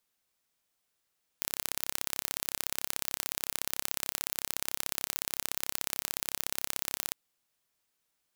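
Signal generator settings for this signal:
impulse train 33.7 per second, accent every 2, −3 dBFS 5.72 s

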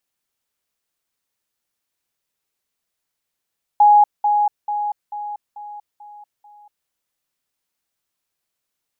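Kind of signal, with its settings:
level staircase 831 Hz −7.5 dBFS, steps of −6 dB, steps 7, 0.24 s 0.20 s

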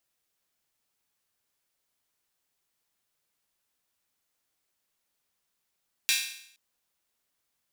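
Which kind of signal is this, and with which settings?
open synth hi-hat length 0.47 s, high-pass 2,500 Hz, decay 0.67 s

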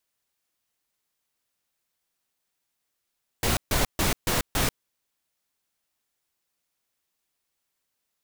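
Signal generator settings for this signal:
noise bursts pink, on 0.14 s, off 0.14 s, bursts 5, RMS −23.5 dBFS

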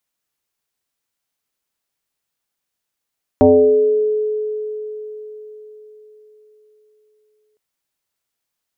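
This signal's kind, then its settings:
two-operator FM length 4.16 s, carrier 427 Hz, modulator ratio 0.39, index 1.7, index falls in 1.21 s exponential, decay 4.43 s, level −5.5 dB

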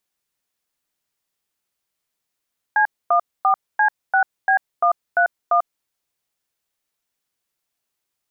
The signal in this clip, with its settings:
touch tones "C14C6B131", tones 93 ms, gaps 251 ms, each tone −15.5 dBFS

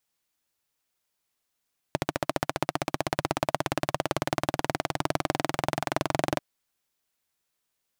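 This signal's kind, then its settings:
pulse-train model of a single-cylinder engine, changing speed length 4.44 s, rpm 1,700, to 2,700, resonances 150/310/620 Hz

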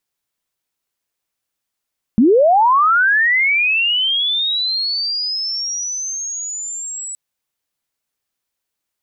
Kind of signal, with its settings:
glide linear 200 Hz → 7,900 Hz −7.5 dBFS → −25 dBFS 4.97 s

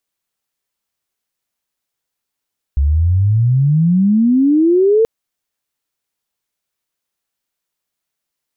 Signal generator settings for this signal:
glide logarithmic 67 Hz → 460 Hz −10 dBFS → −8 dBFS 2.28 s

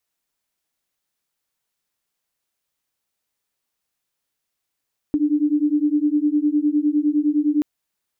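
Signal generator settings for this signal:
two tones that beat 292 Hz, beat 9.8 Hz, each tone −19 dBFS 2.48 s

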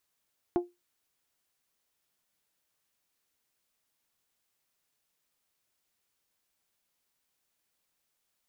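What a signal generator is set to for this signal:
struck glass bell, lowest mode 352 Hz, decay 0.21 s, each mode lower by 8 dB, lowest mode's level −20 dB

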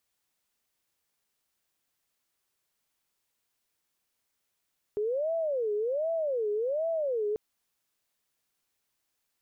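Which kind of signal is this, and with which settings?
siren wail 414–663 Hz 1.3 per second sine −26.5 dBFS 2.39 s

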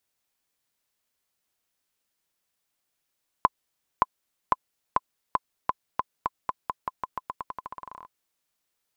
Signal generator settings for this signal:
bouncing ball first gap 0.57 s, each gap 0.88, 1,020 Hz, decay 32 ms −5 dBFS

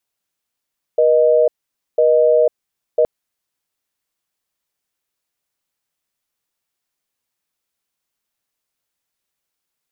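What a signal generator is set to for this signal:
call progress tone busy tone, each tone −12.5 dBFS 2.07 s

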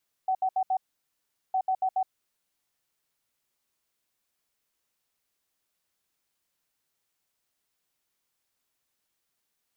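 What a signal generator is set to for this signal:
beeps in groups sine 755 Hz, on 0.07 s, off 0.07 s, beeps 4, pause 0.77 s, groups 2, −22.5 dBFS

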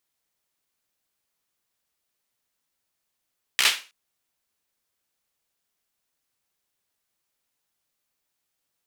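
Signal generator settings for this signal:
synth clap length 0.32 s, bursts 5, apart 15 ms, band 2,600 Hz, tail 0.32 s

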